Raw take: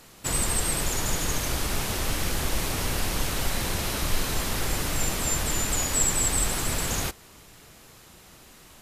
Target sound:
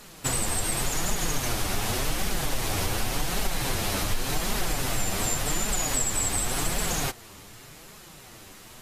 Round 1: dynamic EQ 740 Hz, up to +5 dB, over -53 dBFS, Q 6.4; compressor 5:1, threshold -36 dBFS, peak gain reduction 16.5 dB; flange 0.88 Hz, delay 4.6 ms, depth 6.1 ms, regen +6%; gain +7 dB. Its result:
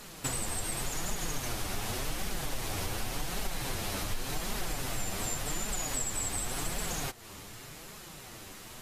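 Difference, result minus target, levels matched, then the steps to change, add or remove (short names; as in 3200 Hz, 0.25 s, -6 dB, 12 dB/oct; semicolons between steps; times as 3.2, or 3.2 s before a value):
compressor: peak gain reduction +7 dB
change: compressor 5:1, threshold -27 dBFS, peak gain reduction 9 dB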